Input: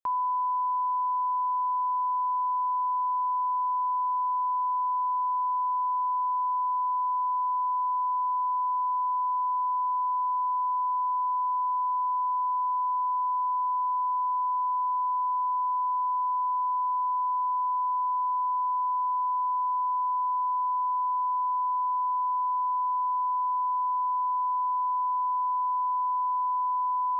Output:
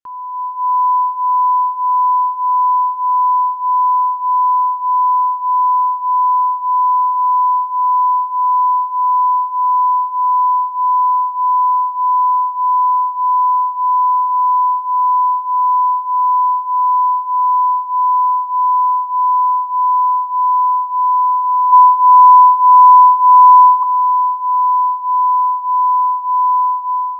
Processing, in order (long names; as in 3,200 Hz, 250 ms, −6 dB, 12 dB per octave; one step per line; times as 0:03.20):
automatic gain control gain up to 17 dB
0:21.72–0:23.83: hollow resonant body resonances 1,000 Hz, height 8 dB
flanger 0.14 Hz, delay 0.6 ms, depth 5.9 ms, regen −34%
linearly interpolated sample-rate reduction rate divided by 2×